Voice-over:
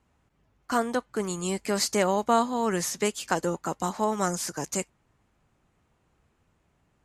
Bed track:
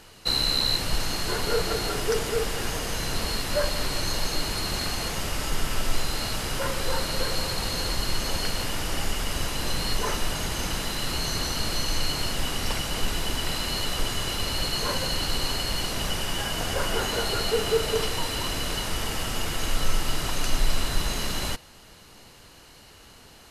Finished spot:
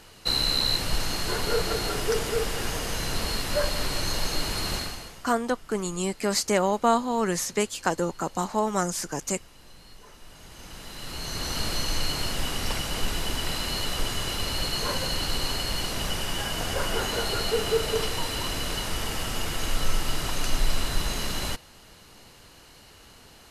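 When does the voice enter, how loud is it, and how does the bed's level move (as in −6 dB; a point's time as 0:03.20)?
4.55 s, +1.0 dB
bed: 0:04.75 −0.5 dB
0:05.35 −23 dB
0:10.13 −23 dB
0:11.57 −1 dB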